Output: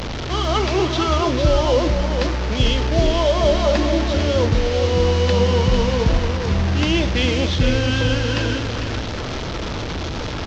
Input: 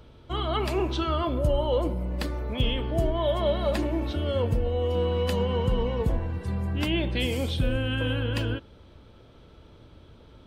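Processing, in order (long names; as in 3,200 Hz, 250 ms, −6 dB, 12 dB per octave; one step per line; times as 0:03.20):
linear delta modulator 32 kbit/s, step −28 dBFS
on a send: single-tap delay 450 ms −7.5 dB
on the sum: level +7.5 dB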